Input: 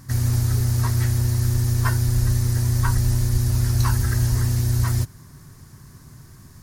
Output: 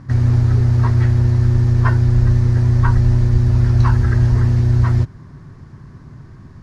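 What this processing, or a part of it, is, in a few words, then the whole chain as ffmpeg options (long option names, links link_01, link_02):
phone in a pocket: -af "lowpass=3600,equalizer=frequency=300:width_type=o:width=2.2:gain=2,highshelf=frequency=2400:gain=-8.5,volume=6dB"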